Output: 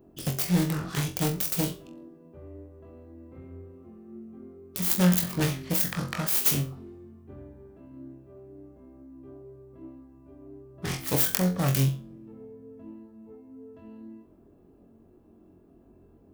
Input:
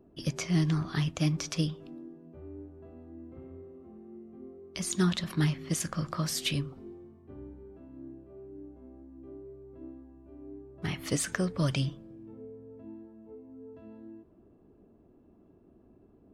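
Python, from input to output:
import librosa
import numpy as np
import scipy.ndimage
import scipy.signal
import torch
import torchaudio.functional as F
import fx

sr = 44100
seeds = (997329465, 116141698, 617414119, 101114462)

y = fx.self_delay(x, sr, depth_ms=0.79)
y = fx.high_shelf(y, sr, hz=10000.0, db=11.5)
y = fx.room_flutter(y, sr, wall_m=3.8, rt60_s=0.28)
y = y * 10.0 ** (1.5 / 20.0)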